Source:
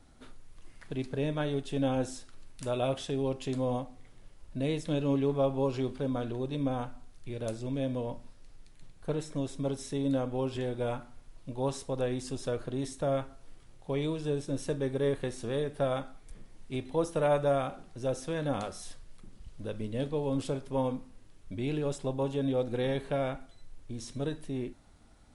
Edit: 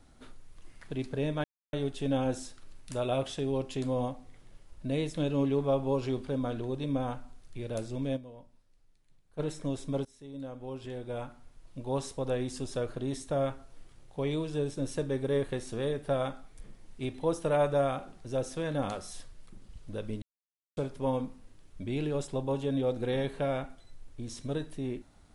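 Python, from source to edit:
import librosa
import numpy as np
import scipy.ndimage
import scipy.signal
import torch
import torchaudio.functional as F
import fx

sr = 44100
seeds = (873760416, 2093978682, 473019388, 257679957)

y = fx.edit(x, sr, fx.insert_silence(at_s=1.44, length_s=0.29),
    fx.fade_down_up(start_s=7.87, length_s=1.24, db=-14.0, fade_s=0.14, curve='exp'),
    fx.fade_in_from(start_s=9.76, length_s=2.03, floor_db=-20.0),
    fx.silence(start_s=19.93, length_s=0.55), tone=tone)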